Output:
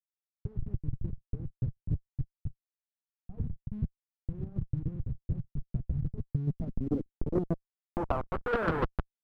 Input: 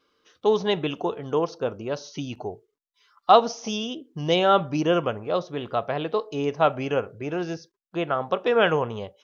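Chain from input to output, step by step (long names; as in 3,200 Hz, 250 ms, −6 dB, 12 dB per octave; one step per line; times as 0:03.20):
notch filter 570 Hz, Q 12
comparator with hysteresis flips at −24 dBFS
square-wave tremolo 6.8 Hz, depth 60%, duty 20%
low-pass filter sweep 130 Hz → 1,400 Hz, 0:06.29–0:08.37
leveller curve on the samples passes 1
level −2.5 dB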